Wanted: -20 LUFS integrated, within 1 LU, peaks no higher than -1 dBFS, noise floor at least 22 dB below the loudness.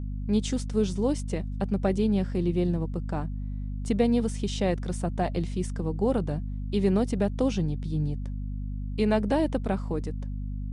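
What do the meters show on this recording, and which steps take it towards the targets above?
hum 50 Hz; harmonics up to 250 Hz; hum level -30 dBFS; loudness -28.5 LUFS; peak -12.5 dBFS; loudness target -20.0 LUFS
-> notches 50/100/150/200/250 Hz; gain +8.5 dB

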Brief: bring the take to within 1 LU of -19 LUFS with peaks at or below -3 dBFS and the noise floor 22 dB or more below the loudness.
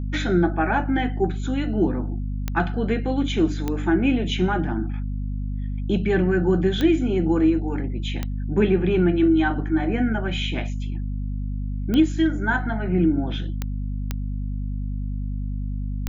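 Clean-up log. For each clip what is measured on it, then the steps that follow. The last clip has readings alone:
clicks 8; hum 50 Hz; harmonics up to 250 Hz; hum level -24 dBFS; loudness -23.5 LUFS; peak -7.0 dBFS; loudness target -19.0 LUFS
-> de-click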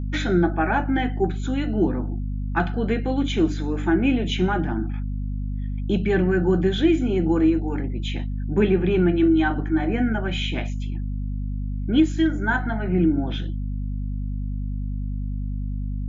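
clicks 0; hum 50 Hz; harmonics up to 250 Hz; hum level -24 dBFS
-> notches 50/100/150/200/250 Hz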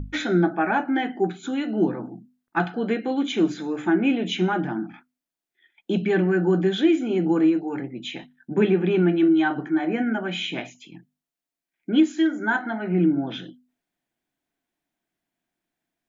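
hum none; loudness -23.0 LUFS; peak -8.0 dBFS; loudness target -19.0 LUFS
-> gain +4 dB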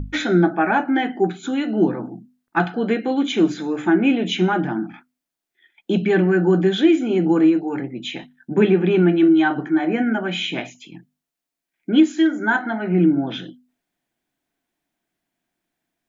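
loudness -19.0 LUFS; peak -4.0 dBFS; noise floor -84 dBFS

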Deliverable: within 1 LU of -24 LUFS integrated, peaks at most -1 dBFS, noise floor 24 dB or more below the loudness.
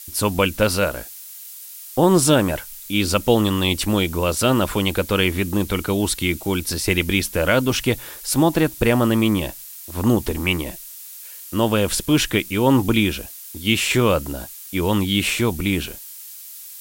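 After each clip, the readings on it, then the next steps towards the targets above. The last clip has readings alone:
noise floor -38 dBFS; noise floor target -44 dBFS; loudness -20.0 LUFS; peak -3.5 dBFS; loudness target -24.0 LUFS
-> denoiser 6 dB, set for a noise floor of -38 dBFS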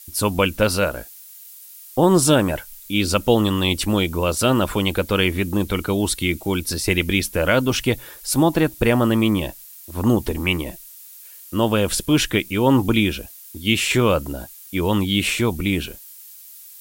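noise floor -42 dBFS; noise floor target -44 dBFS
-> denoiser 6 dB, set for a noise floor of -42 dBFS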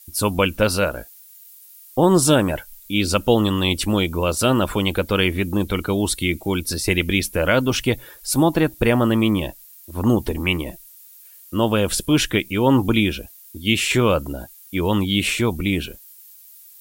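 noise floor -46 dBFS; loudness -20.0 LUFS; peak -3.5 dBFS; loudness target -24.0 LUFS
-> gain -4 dB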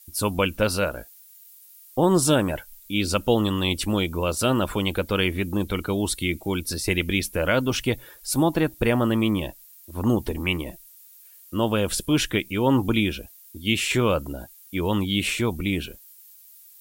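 loudness -24.0 LUFS; peak -7.5 dBFS; noise floor -50 dBFS

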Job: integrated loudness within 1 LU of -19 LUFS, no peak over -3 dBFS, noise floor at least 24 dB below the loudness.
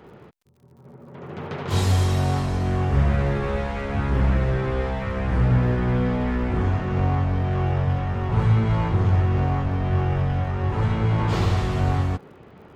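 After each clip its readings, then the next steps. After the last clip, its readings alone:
ticks 55/s; loudness -23.0 LUFS; peak -8.5 dBFS; loudness target -19.0 LUFS
-> de-click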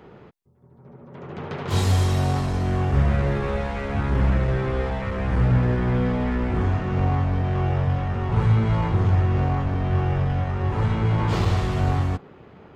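ticks 0.078/s; loudness -23.0 LUFS; peak -8.5 dBFS; loudness target -19.0 LUFS
-> gain +4 dB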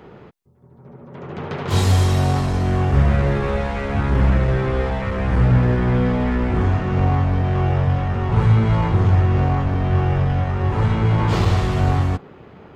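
loudness -19.0 LUFS; peak -4.5 dBFS; noise floor -44 dBFS

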